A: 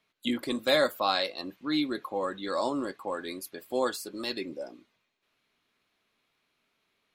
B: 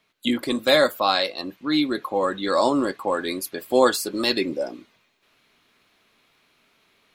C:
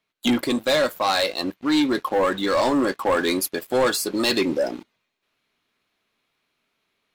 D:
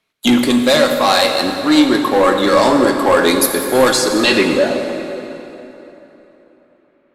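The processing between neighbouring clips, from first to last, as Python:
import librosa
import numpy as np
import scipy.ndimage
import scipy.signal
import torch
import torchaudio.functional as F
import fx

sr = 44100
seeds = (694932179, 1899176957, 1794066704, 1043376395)

y1 = fx.rider(x, sr, range_db=10, speed_s=2.0)
y1 = y1 * librosa.db_to_amplitude(7.0)
y2 = fx.rider(y1, sr, range_db=4, speed_s=0.5)
y2 = fx.leveller(y2, sr, passes=3)
y2 = y2 * librosa.db_to_amplitude(-7.5)
y3 = fx.filter_sweep_lowpass(y2, sr, from_hz=12000.0, to_hz=1600.0, start_s=3.81, end_s=4.53, q=1.4)
y3 = fx.rev_plate(y3, sr, seeds[0], rt60_s=3.5, hf_ratio=0.7, predelay_ms=0, drr_db=3.5)
y3 = y3 * librosa.db_to_amplitude(7.0)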